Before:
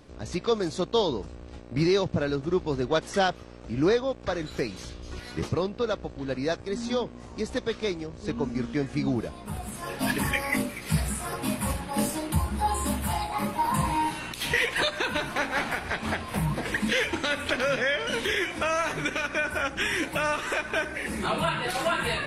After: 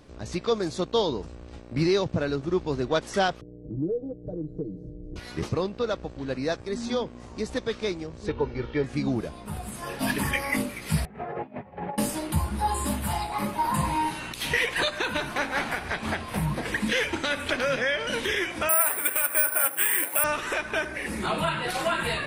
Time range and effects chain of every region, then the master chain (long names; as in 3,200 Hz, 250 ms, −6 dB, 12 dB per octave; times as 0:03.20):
0:03.41–0:05.16: inverse Chebyshev low-pass filter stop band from 980 Hz + comb filter 6.5 ms, depth 97% + downward compressor 2 to 1, threshold −31 dBFS
0:08.28–0:08.84: low-pass filter 4,200 Hz 24 dB per octave + comb filter 2.2 ms, depth 75%
0:11.05–0:11.98: compressor whose output falls as the input rises −35 dBFS, ratio −0.5 + loudspeaker in its box 140–2,000 Hz, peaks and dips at 290 Hz −7 dB, 410 Hz +8 dB, 740 Hz +7 dB, 1,100 Hz −7 dB, 1,500 Hz −6 dB + double-tracking delay 12 ms −13.5 dB
0:18.69–0:20.24: band-pass filter 520–2,800 Hz + bad sample-rate conversion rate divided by 4×, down filtered, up zero stuff
whole clip: no processing